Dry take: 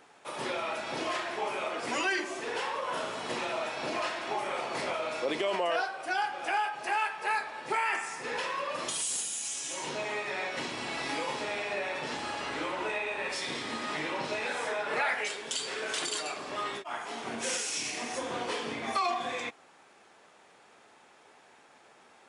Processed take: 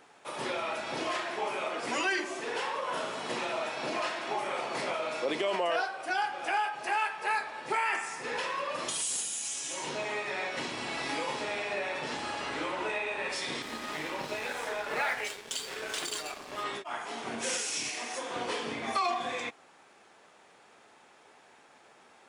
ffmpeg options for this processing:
-filter_complex "[0:a]asettb=1/sr,asplit=3[a][b][c];[a]atrim=end=1.084[d];[b]atrim=start=1.08:end=6.1,asetpts=PTS-STARTPTS,afade=t=in:d=0.004:c=qsin,afade=t=out:st=5.016:d=0.004:c=qsin,highpass=f=110:w=0.5412,highpass=f=110:w=1.3066[e];[c]atrim=start=6.096[f];[d][e]acrossfade=d=0.004:c1=hsin:c2=qsin[g];[g][f]acrossfade=d=0.004:c1=qsin:c2=hsin,asettb=1/sr,asplit=3[h][i][j];[h]atrim=end=13.624[k];[i]atrim=start=13.62:end=16.64,asetpts=PTS-STARTPTS,afade=t=in:d=0.004:c=qsin,afade=t=out:st=3.016:d=0.004:c=qsin,aeval=exprs='sgn(val(0))*max(abs(val(0))-0.00668,0)':c=same[l];[j]atrim=start=16.636[m];[k][l]acrossfade=d=0.004:c1=hsin:c2=qsin[n];[n][m]acrossfade=d=0.004:c1=qsin:c2=hsin,asettb=1/sr,asplit=3[o][p][q];[o]atrim=end=17.894[r];[p]atrim=start=17.89:end=18.36,asetpts=PTS-STARTPTS,afade=t=in:d=0.004:c=qsin,afade=t=out:st=0.466:d=0.004:c=qsin,highpass=f=500:p=1[s];[q]atrim=start=18.356[t];[r][s]acrossfade=d=0.004:c1=hsin:c2=qsin[u];[u][t]acrossfade=d=0.004:c1=qsin:c2=hsin"

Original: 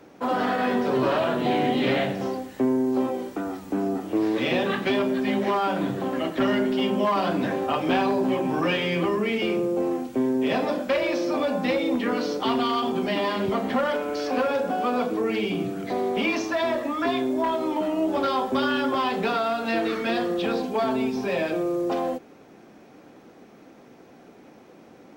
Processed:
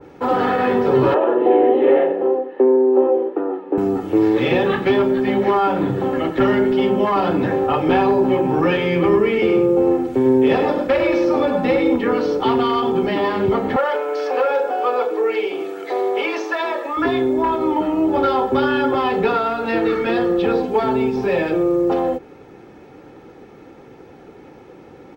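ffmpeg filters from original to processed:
-filter_complex "[0:a]asettb=1/sr,asplit=3[a][b][c];[a]atrim=end=1.144[d];[b]atrim=start=1.14:end=3.78,asetpts=PTS-STARTPTS,afade=t=in:d=0.004:c=qsin,afade=t=out:st=2.636:d=0.004:c=qsin,highpass=f=300:w=0.5412,highpass=f=300:w=1.3066,equalizer=f=350:t=q:w=4:g=6,equalizer=f=530:t=q:w=4:g=6,equalizer=f=1.4k:t=q:w=4:g=-6,equalizer=f=2.2k:t=q:w=4:g=-9,lowpass=f=2.4k:w=0.5412,lowpass=f=2.4k:w=1.3066[e];[c]atrim=start=3.776[f];[d][e]acrossfade=d=0.004:c1=hsin:c2=qsin[g];[g][f]acrossfade=d=0.004:c1=qsin:c2=hsin,asplit=3[h][i][j];[h]afade=t=out:st=9.02:d=0.02[k];[i]aecho=1:1:100:0.422,afade=t=in:st=9.02:d=0.02,afade=t=out:st=11.95:d=0.02[l];[j]afade=t=in:st=11.95:d=0.02[m];[k][l][m]amix=inputs=3:normalize=0,asettb=1/sr,asplit=3[n][o][p];[n]atrim=end=13.764[q];[o]atrim=start=13.76:end=16.97,asetpts=PTS-STARTPTS,afade=t=in:d=0.004:c=qsin,afade=t=out:st=3.206:d=0.004:c=qsin,highpass=f=400:w=0.5412,highpass=f=400:w=1.3066[r];[p]atrim=start=16.966[s];[q][r]acrossfade=d=0.004:c1=hsin:c2=qsin[t];[t][s]acrossfade=d=0.004:c1=qsin:c2=hsin,bass=f=250:g=6,treble=f=4k:g=-8,aecho=1:1:2.3:0.52,adynamicequalizer=threshold=0.0158:dfrequency=1900:dqfactor=0.7:tfrequency=1900:tqfactor=0.7:attack=5:release=100:ratio=0.375:range=2:mode=cutabove:tftype=highshelf,volume=5.5dB"

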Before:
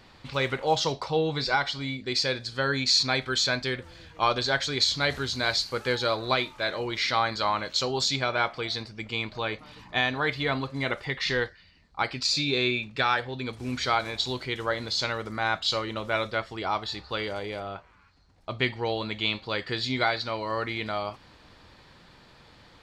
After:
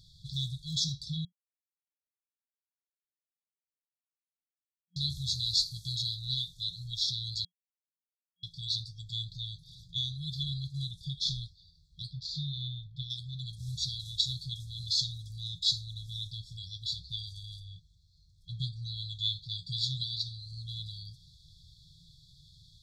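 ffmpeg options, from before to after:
-filter_complex "[0:a]asplit=3[a][b][c];[a]afade=t=out:st=12.1:d=0.02[d];[b]lowpass=2.2k,afade=t=in:st=12.1:d=0.02,afade=t=out:st=13.09:d=0.02[e];[c]afade=t=in:st=13.09:d=0.02[f];[d][e][f]amix=inputs=3:normalize=0,asplit=5[g][h][i][j][k];[g]atrim=end=1.25,asetpts=PTS-STARTPTS,afade=t=out:st=1.246:d=0.004:c=hsin[l];[h]atrim=start=1.25:end=4.96,asetpts=PTS-STARTPTS,volume=0[m];[i]atrim=start=4.96:end=7.45,asetpts=PTS-STARTPTS,afade=t=in:d=0.004:c=hsin,afade=t=out:st=2.486:d=0.004:c=hsin[n];[j]atrim=start=7.45:end=8.43,asetpts=PTS-STARTPTS,volume=0[o];[k]atrim=start=8.43,asetpts=PTS-STARTPTS,afade=t=in:d=0.004:c=hsin[p];[l][m][n][o][p]concat=n=5:v=0:a=1,afftfilt=real='re*(1-between(b*sr/4096,180,3300))':imag='im*(1-between(b*sr/4096,180,3300))':win_size=4096:overlap=0.75"

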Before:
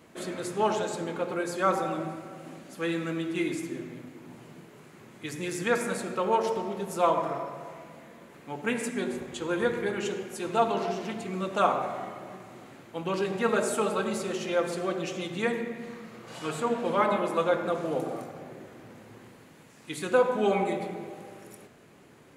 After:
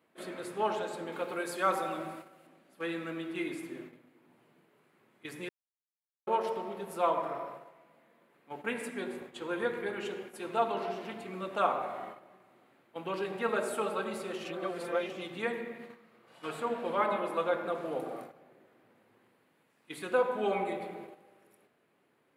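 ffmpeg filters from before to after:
-filter_complex "[0:a]asettb=1/sr,asplit=3[a][b][c];[a]atrim=end=1.124[d];[b]atrim=start=1.12:end=2.47,asetpts=PTS-STARTPTS,afade=t=in:d=0.004:c=qsin,afade=t=out:st=1.346:d=0.004:c=qsin,highshelf=f=2.8k:g=8.5[e];[c]atrim=start=2.466[f];[d][e]acrossfade=d=0.004:c1=hsin:c2=qsin[g];[g][f]acrossfade=d=0.004:c1=qsin:c2=hsin,asplit=5[h][i][j][k][l];[h]atrim=end=5.49,asetpts=PTS-STARTPTS,afade=t=out:st=5.486:d=0.004:c=hsin[m];[i]atrim=start=5.49:end=6.27,asetpts=PTS-STARTPTS,volume=0[n];[j]atrim=start=6.27:end=14.452,asetpts=PTS-STARTPTS,afade=t=in:d=0.004:c=hsin[o];[k]atrim=start=14.448:end=15.102,asetpts=PTS-STARTPTS,areverse[p];[l]atrim=start=15.098[q];[m][n][o]concat=n=3:v=0:a=1[r];[r][p]acrossfade=d=0.004:c1=hsin:c2=hsin[s];[s][q]acrossfade=d=0.004:c1=hsin:c2=hsin,agate=range=-10dB:threshold=-39dB:ratio=16:detection=peak,highpass=f=350:p=1,equalizer=f=6.5k:t=o:w=0.86:g=-11.5,volume=-3.5dB"

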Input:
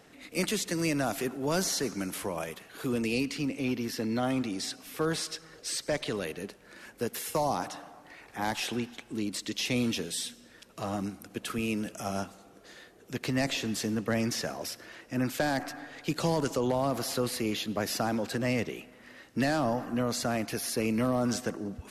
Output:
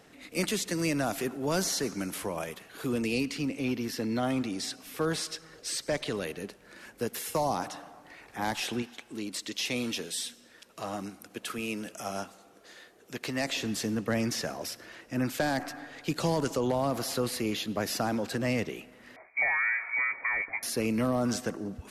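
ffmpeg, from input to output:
-filter_complex "[0:a]asettb=1/sr,asplit=3[a][b][c];[a]atrim=end=8.824[d];[b]atrim=start=8.82:end=13.56,asetpts=PTS-STARTPTS,afade=t=in:d=0.004:c=qsin,afade=t=out:st=4.736:d=0.004:c=qsin,lowshelf=f=220:g=-10.5[e];[c]atrim=start=13.556[f];[d][e]acrossfade=d=0.004:c1=hsin:c2=qsin[g];[g][f]acrossfade=d=0.004:c1=qsin:c2=hsin,asettb=1/sr,asplit=3[h][i][j];[h]atrim=end=19.164[k];[i]atrim=start=19.16:end=20.63,asetpts=PTS-STARTPTS,afade=t=in:d=0.004:c=qsin,afade=t=out:st=1.466:d=0.004:c=qsin,lowpass=f=2.1k:t=q:w=0.5098,lowpass=f=2.1k:t=q:w=0.6013,lowpass=f=2.1k:t=q:w=0.9,lowpass=f=2.1k:t=q:w=2.563,afreqshift=-2500[l];[j]atrim=start=20.626[m];[k][l]acrossfade=d=0.004:c1=hsin:c2=qsin[n];[n][m]acrossfade=d=0.004:c1=qsin:c2=hsin"

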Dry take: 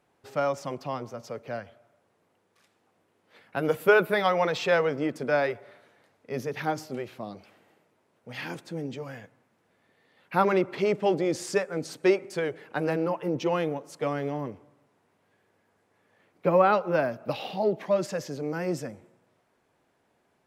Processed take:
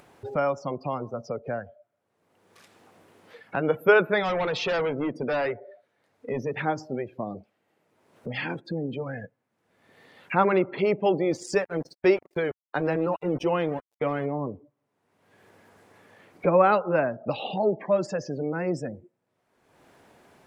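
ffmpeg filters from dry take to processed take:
-filter_complex "[0:a]asettb=1/sr,asplit=3[a][b][c];[a]atrim=end=4.234[d];[b]atrim=start=4.23:end=6.52,asetpts=PTS-STARTPTS,afade=t=in:d=0.004:c=qsin,afade=t=out:st=2.286:d=0.004:c=qsin,asoftclip=type=hard:threshold=-25.5dB[e];[c]atrim=start=6.516[f];[d][e]acrossfade=d=0.004:c1=hsin:c2=qsin[g];[g][f]acrossfade=d=0.004:c1=qsin:c2=hsin,asettb=1/sr,asplit=3[h][i][j];[h]atrim=end=11.314[k];[i]atrim=start=11.31:end=14.26,asetpts=PTS-STARTPTS,afade=t=in:d=0.004:c=qsin,afade=t=out:st=2.946:d=0.004:c=qsin,aeval=exprs='val(0)*gte(abs(val(0)),0.0158)':c=same[l];[j]atrim=start=14.256[m];[k][l]acrossfade=d=0.004:c1=hsin:c2=qsin[n];[n][m]acrossfade=d=0.004:c1=qsin:c2=hsin,afftdn=nr=30:nf=-42,acompressor=mode=upward:threshold=-26dB:ratio=2.5,volume=1.5dB"

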